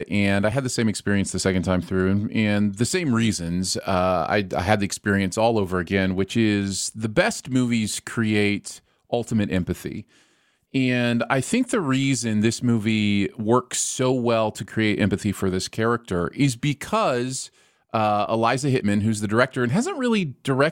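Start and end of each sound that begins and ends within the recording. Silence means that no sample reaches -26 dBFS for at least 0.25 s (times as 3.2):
9.13–10
10.75–17.45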